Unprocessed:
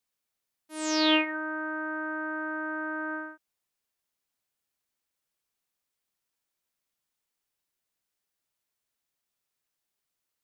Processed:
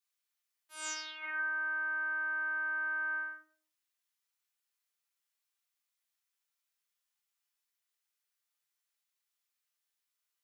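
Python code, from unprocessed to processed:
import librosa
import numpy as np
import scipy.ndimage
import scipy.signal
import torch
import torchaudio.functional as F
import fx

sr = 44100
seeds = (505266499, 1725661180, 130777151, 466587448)

y = scipy.signal.sosfilt(scipy.signal.butter(2, 1100.0, 'highpass', fs=sr, output='sos'), x)
y = fx.over_compress(y, sr, threshold_db=-35.0, ratio=-1.0)
y = fx.room_shoebox(y, sr, seeds[0], volume_m3=35.0, walls='mixed', distance_m=0.91)
y = y * 10.0 ** (-8.0 / 20.0)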